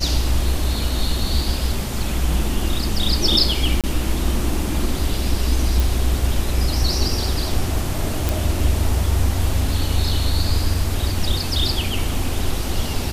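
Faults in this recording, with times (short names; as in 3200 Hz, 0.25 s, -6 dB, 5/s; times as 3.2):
3.81–3.84 gap 27 ms
5.8 pop
8.29 pop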